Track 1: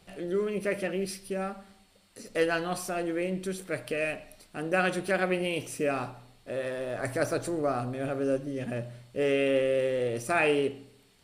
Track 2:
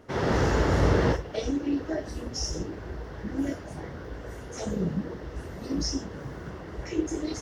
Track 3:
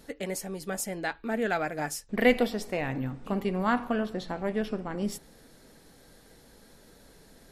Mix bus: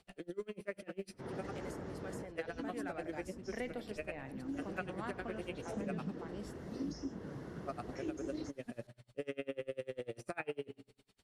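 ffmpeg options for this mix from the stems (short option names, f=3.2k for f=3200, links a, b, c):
-filter_complex "[0:a]aeval=exprs='val(0)*pow(10,-34*(0.5-0.5*cos(2*PI*10*n/s))/20)':c=same,volume=-4dB,asplit=3[a][b][c];[a]atrim=end=6.47,asetpts=PTS-STARTPTS,afade=t=out:st=6.466:d=0.004:c=hsin[d];[b]atrim=start=6.47:end=7.66,asetpts=PTS-STARTPTS,volume=0[e];[c]atrim=start=7.66,asetpts=PTS-STARTPTS,afade=t=in:d=0.004:c=hsin[f];[d][e][f]concat=n=3:v=0:a=1[g];[1:a]equalizer=f=160:w=0.57:g=10.5,alimiter=limit=-12dB:level=0:latency=1:release=294,adelay=1100,volume=-10.5dB,afade=t=in:st=4.41:d=0.36:silence=0.354813[h];[2:a]adelay=1350,volume=-13.5dB[i];[g][h][i]amix=inputs=3:normalize=0,acrossover=split=200|2500[j][k][l];[j]acompressor=threshold=-53dB:ratio=4[m];[k]acompressor=threshold=-38dB:ratio=4[n];[l]acompressor=threshold=-57dB:ratio=4[o];[m][n][o]amix=inputs=3:normalize=0,lowpass=11k"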